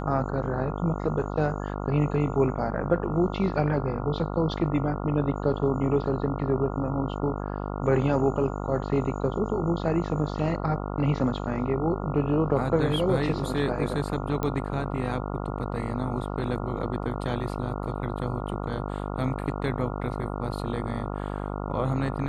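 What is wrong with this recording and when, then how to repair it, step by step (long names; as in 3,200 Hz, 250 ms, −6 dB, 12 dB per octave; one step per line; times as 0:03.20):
mains buzz 50 Hz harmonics 28 −32 dBFS
0:14.43: click −15 dBFS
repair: click removal
hum removal 50 Hz, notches 28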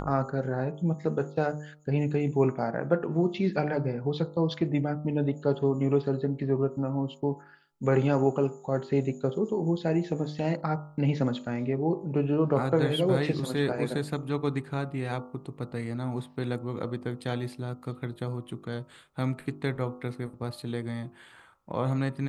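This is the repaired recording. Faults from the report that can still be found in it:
none of them is left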